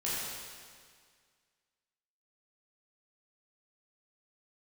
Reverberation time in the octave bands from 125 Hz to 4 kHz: 1.9, 1.9, 1.9, 1.9, 1.9, 1.8 seconds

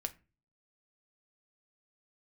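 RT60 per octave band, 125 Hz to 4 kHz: 0.60, 0.50, 0.35, 0.30, 0.30, 0.20 seconds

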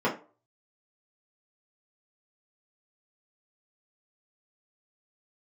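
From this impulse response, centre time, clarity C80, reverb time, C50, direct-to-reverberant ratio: 19 ms, 16.5 dB, 0.40 s, 10.5 dB, −7.0 dB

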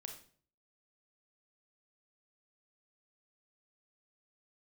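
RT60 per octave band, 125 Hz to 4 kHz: 0.65, 0.60, 0.55, 0.45, 0.40, 0.40 seconds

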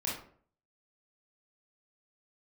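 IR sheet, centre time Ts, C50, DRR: 42 ms, 3.0 dB, −5.5 dB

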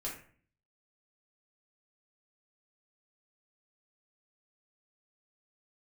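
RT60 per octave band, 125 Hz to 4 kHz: 0.75, 0.65, 0.50, 0.45, 0.45, 0.35 seconds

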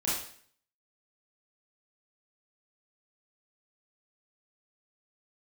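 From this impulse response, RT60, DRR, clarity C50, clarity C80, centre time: 0.55 s, −8.5 dB, 1.0 dB, 6.0 dB, 55 ms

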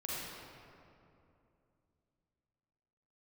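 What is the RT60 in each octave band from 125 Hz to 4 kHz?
3.5, 3.4, 2.9, 2.5, 2.0, 1.4 seconds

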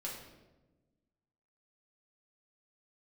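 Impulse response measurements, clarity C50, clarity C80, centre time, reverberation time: 3.5 dB, 6.0 dB, 49 ms, 1.2 s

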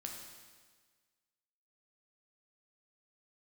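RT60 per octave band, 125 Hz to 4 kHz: 1.5, 1.5, 1.5, 1.5, 1.5, 1.5 seconds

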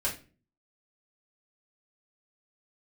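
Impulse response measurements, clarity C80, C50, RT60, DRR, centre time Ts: 16.0 dB, 10.0 dB, 0.35 s, −6.5 dB, 20 ms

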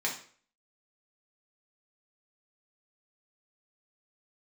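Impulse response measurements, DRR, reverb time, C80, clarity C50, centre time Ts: −3.0 dB, 0.50 s, 12.5 dB, 8.0 dB, 22 ms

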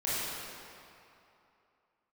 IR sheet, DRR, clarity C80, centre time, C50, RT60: −10.5 dB, −3.0 dB, 190 ms, −5.5 dB, 2.8 s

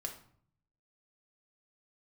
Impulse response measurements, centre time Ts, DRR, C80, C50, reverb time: 16 ms, 2.0 dB, 13.0 dB, 9.0 dB, 0.55 s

